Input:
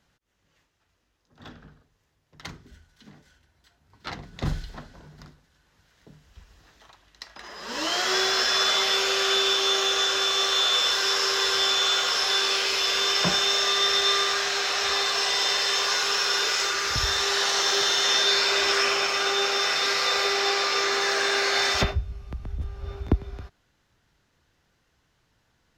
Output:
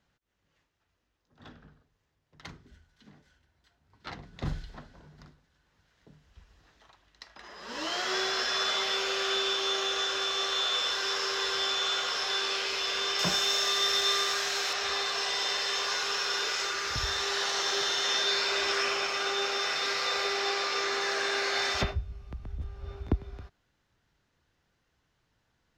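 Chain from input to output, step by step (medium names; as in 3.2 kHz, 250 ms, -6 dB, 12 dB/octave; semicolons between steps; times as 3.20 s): peaking EQ 14 kHz -9 dB 1.3 oct, from 13.19 s +6 dB, from 14.73 s -5.5 dB; trim -5.5 dB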